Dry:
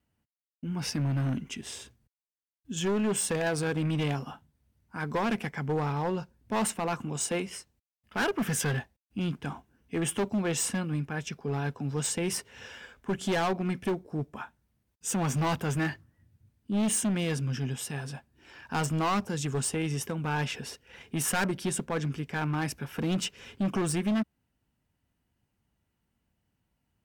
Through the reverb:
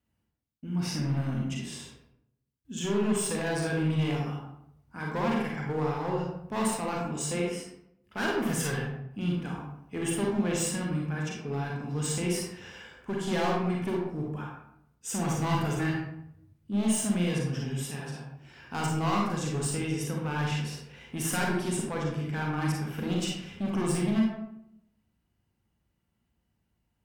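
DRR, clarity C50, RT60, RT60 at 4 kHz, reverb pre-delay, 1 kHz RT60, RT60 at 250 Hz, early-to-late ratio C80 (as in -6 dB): -2.0 dB, 0.5 dB, 0.75 s, 0.45 s, 34 ms, 0.70 s, 0.90 s, 5.0 dB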